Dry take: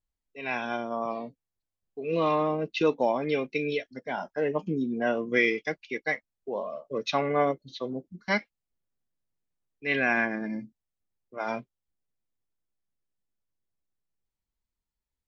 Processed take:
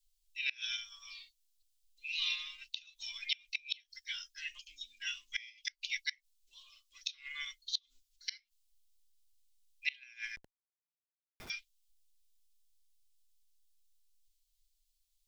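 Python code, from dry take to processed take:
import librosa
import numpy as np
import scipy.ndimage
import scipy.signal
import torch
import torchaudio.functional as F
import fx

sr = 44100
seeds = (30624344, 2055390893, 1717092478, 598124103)

y = scipy.signal.sosfilt(scipy.signal.cheby2(4, 70, [110.0, 810.0], 'bandstop', fs=sr, output='sos'), x)
y = fx.schmitt(y, sr, flips_db=-53.5, at=(10.36, 11.5))
y = fx.gate_flip(y, sr, shuts_db=-33.0, range_db=-27)
y = F.gain(torch.from_numpy(y), 13.0).numpy()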